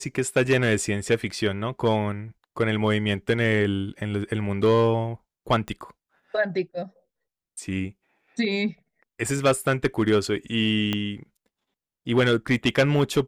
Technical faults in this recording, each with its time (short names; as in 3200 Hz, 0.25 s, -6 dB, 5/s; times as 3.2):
5.68 pop -19 dBFS
10.93 pop -12 dBFS